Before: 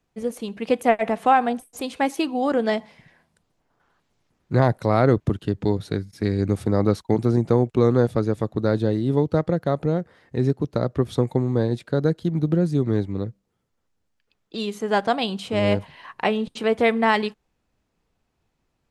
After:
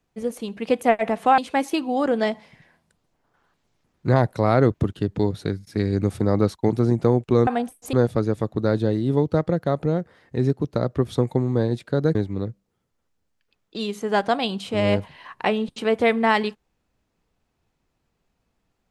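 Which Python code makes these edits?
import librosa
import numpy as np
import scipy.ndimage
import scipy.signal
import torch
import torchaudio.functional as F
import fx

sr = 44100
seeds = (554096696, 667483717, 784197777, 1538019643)

y = fx.edit(x, sr, fx.move(start_s=1.38, length_s=0.46, to_s=7.93),
    fx.cut(start_s=12.15, length_s=0.79), tone=tone)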